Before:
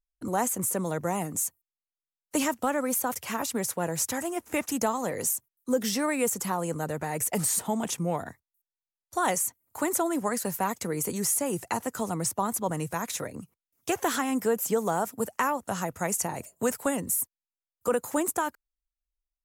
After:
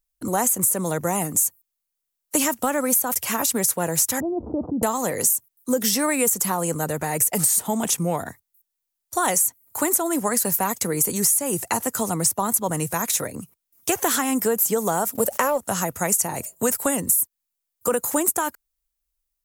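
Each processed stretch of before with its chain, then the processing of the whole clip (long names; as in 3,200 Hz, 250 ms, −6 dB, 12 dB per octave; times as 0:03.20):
0:04.20–0:04.83: Gaussian smoothing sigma 14 samples + envelope flattener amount 70%
0:15.15–0:15.58: mu-law and A-law mismatch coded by A + parametric band 560 Hz +12 dB 0.47 octaves + envelope flattener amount 50%
whole clip: high-shelf EQ 6,700 Hz +12 dB; downward compressor, threshold −22 dBFS; level +5.5 dB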